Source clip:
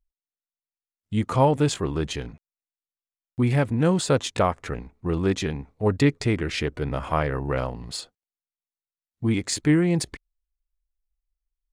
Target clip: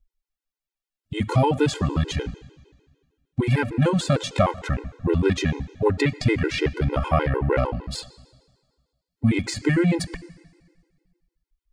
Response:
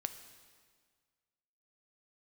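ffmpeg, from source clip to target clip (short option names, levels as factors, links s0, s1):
-filter_complex "[0:a]acrossover=split=910|2000[s0][s1][s2];[s0]acompressor=threshold=0.0794:ratio=4[s3];[s1]acompressor=threshold=0.0224:ratio=4[s4];[s2]acompressor=threshold=0.0251:ratio=4[s5];[s3][s4][s5]amix=inputs=3:normalize=0,asplit=2[s6][s7];[1:a]atrim=start_sample=2205,lowpass=6700,lowshelf=f=60:g=11.5[s8];[s7][s8]afir=irnorm=-1:irlink=0,volume=0.75[s9];[s6][s9]amix=inputs=2:normalize=0,afftfilt=real='re*gt(sin(2*PI*6.6*pts/sr)*(1-2*mod(floor(b*sr/1024/270),2)),0)':imag='im*gt(sin(2*PI*6.6*pts/sr)*(1-2*mod(floor(b*sr/1024/270),2)),0)':win_size=1024:overlap=0.75,volume=1.5"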